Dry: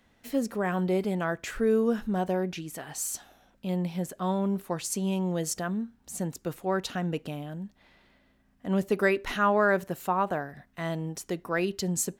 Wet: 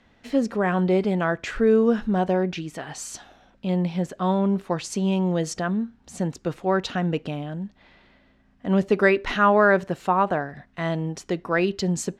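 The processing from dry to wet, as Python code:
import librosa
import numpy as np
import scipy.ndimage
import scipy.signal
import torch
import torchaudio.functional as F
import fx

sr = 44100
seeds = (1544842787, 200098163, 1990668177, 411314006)

y = scipy.signal.sosfilt(scipy.signal.butter(2, 4900.0, 'lowpass', fs=sr, output='sos'), x)
y = y * 10.0 ** (6.0 / 20.0)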